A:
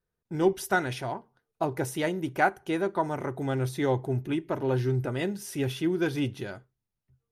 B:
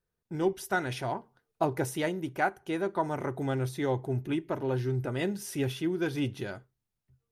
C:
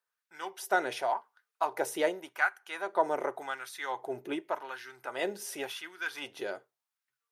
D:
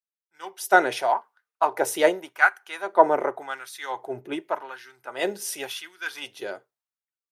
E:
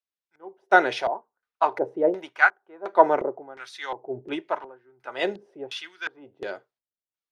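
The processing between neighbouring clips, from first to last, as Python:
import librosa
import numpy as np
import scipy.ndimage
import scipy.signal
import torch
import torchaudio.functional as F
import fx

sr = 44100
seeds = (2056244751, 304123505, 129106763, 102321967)

y1 = fx.rider(x, sr, range_db=5, speed_s=0.5)
y1 = y1 * 10.0 ** (-2.5 / 20.0)
y2 = fx.filter_lfo_highpass(y1, sr, shape='sine', hz=0.88, low_hz=460.0, high_hz=1500.0, q=1.7)
y3 = fx.band_widen(y2, sr, depth_pct=70)
y3 = y3 * 10.0 ** (6.5 / 20.0)
y4 = fx.filter_lfo_lowpass(y3, sr, shape='square', hz=1.4, low_hz=480.0, high_hz=4500.0, q=1.0)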